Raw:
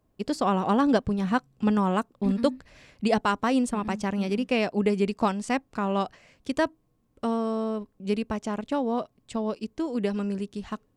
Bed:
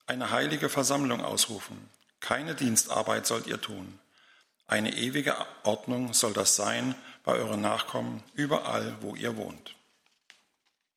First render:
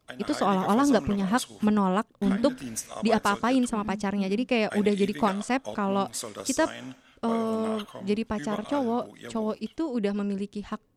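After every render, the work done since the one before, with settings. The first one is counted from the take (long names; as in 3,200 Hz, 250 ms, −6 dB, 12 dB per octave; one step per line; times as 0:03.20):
mix in bed −9.5 dB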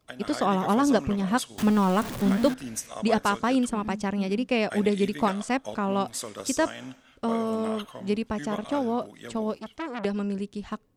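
0:01.58–0:02.54: converter with a step at zero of −28.5 dBFS
0:09.58–0:10.05: saturating transformer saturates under 2,100 Hz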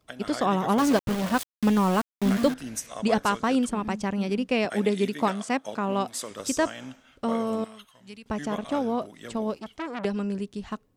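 0:00.78–0:02.45: centre clipping without the shift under −27.5 dBFS
0:04.65–0:06.31: high-pass filter 150 Hz
0:07.64–0:08.26: guitar amp tone stack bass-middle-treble 5-5-5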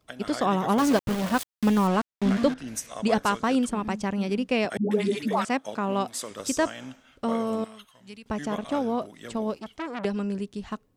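0:01.87–0:02.68: high-frequency loss of the air 62 metres
0:04.77–0:05.45: all-pass dispersion highs, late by 142 ms, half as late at 410 Hz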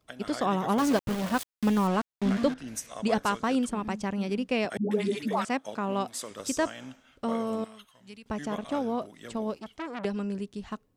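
level −3 dB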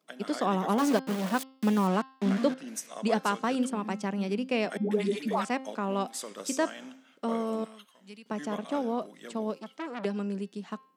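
elliptic high-pass filter 170 Hz
hum removal 264.5 Hz, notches 20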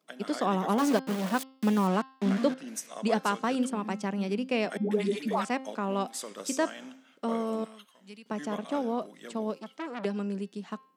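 no processing that can be heard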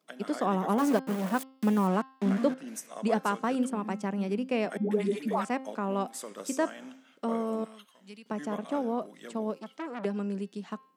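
dynamic equaliser 4,200 Hz, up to −7 dB, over −52 dBFS, Q 0.8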